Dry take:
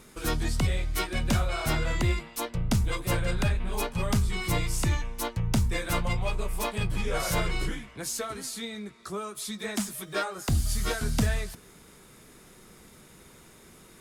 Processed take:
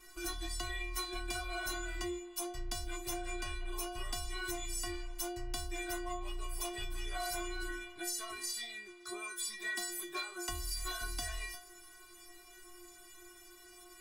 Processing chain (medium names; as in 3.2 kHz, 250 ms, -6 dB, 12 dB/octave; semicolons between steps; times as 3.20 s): peaking EQ 490 Hz -14.5 dB 0.27 oct; inharmonic resonator 350 Hz, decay 0.5 s, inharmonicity 0.008; compression 6:1, threshold -51 dBFS, peak gain reduction 13 dB; peaking EQ 180 Hz -14 dB 1.1 oct; trim +16.5 dB